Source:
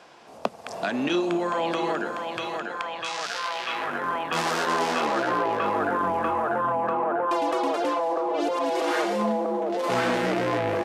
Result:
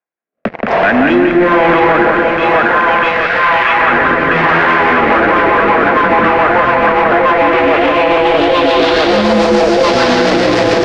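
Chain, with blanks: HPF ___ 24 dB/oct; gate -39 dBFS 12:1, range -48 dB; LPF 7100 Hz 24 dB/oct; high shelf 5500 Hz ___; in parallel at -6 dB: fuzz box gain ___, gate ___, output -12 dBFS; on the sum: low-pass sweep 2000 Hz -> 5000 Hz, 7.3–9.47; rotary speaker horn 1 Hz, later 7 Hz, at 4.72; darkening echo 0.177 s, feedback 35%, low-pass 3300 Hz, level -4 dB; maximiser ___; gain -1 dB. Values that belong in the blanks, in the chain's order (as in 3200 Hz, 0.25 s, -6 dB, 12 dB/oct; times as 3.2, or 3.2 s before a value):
130 Hz, -9 dB, 38 dB, -42 dBFS, +11 dB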